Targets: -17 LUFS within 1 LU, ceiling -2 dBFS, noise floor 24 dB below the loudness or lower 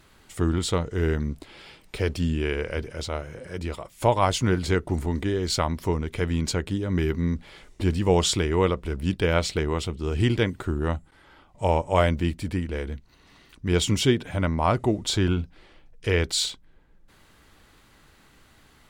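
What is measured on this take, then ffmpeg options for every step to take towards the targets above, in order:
loudness -25.5 LUFS; peak level -6.0 dBFS; loudness target -17.0 LUFS
-> -af "volume=2.66,alimiter=limit=0.794:level=0:latency=1"

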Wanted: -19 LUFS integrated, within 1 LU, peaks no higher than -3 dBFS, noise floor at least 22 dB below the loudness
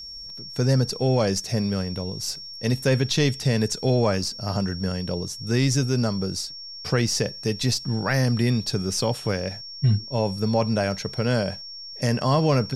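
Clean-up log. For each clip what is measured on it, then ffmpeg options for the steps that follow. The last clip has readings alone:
steady tone 5.5 kHz; tone level -36 dBFS; loudness -24.0 LUFS; peak level -9.5 dBFS; loudness target -19.0 LUFS
-> -af "bandreject=f=5500:w=30"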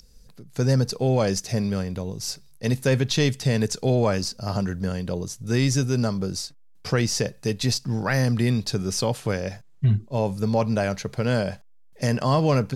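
steady tone not found; loudness -24.5 LUFS; peak level -9.5 dBFS; loudness target -19.0 LUFS
-> -af "volume=1.88"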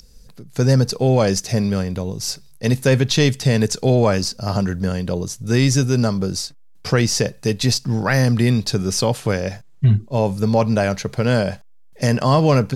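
loudness -19.0 LUFS; peak level -4.0 dBFS; noise floor -44 dBFS

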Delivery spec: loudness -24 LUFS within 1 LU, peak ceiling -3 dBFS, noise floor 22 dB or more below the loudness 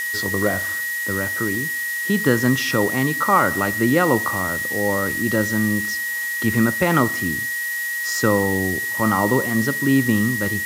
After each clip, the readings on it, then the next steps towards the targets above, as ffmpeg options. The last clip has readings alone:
steady tone 1.9 kHz; tone level -23 dBFS; noise floor -25 dBFS; noise floor target -42 dBFS; loudness -19.5 LUFS; peak level -3.0 dBFS; loudness target -24.0 LUFS
-> -af "bandreject=f=1900:w=30"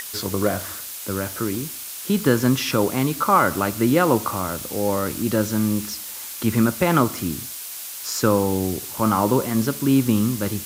steady tone not found; noise floor -34 dBFS; noise floor target -44 dBFS
-> -af "afftdn=nr=10:nf=-34"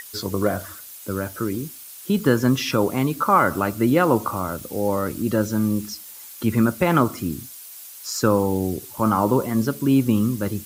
noise floor -41 dBFS; noise floor target -44 dBFS
-> -af "afftdn=nr=6:nf=-41"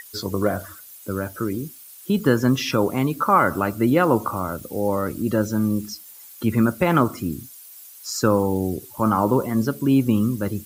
noise floor -44 dBFS; loudness -22.0 LUFS; peak level -4.0 dBFS; loudness target -24.0 LUFS
-> -af "volume=0.794"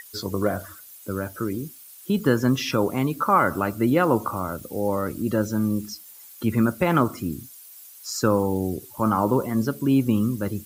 loudness -24.0 LUFS; peak level -6.0 dBFS; noise floor -46 dBFS

